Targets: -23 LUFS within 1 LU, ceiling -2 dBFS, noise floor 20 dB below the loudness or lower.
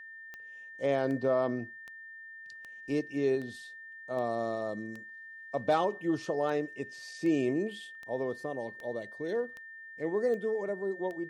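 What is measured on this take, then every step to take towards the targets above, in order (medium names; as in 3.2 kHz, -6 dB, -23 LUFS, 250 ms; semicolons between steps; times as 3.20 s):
clicks found 15; steady tone 1.8 kHz; tone level -45 dBFS; loudness -33.0 LUFS; peak level -16.5 dBFS; loudness target -23.0 LUFS
-> de-click; band-stop 1.8 kHz, Q 30; trim +10 dB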